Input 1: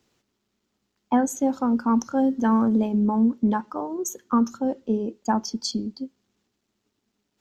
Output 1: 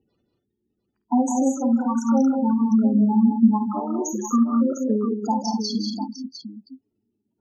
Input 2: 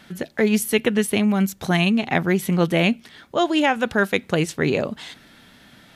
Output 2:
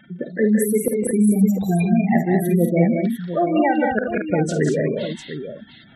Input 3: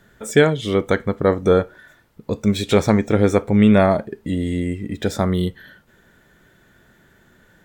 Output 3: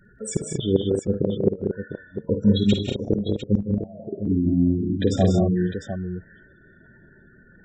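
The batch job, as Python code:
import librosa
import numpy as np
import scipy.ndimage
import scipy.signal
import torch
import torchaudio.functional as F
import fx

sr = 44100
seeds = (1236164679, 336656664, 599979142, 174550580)

p1 = fx.spec_gate(x, sr, threshold_db=-10, keep='strong')
p2 = fx.dynamic_eq(p1, sr, hz=2700.0, q=3.4, threshold_db=-43.0, ratio=4.0, max_db=4)
p3 = fx.gate_flip(p2, sr, shuts_db=-9.0, range_db=-29)
p4 = p3 + fx.echo_multitap(p3, sr, ms=(52, 72, 158, 189, 228, 702), db=(-10.0, -19.0, -11.0, -5.0, -7.5, -10.0), dry=0)
y = F.gain(torch.from_numpy(p4), 1.0).numpy()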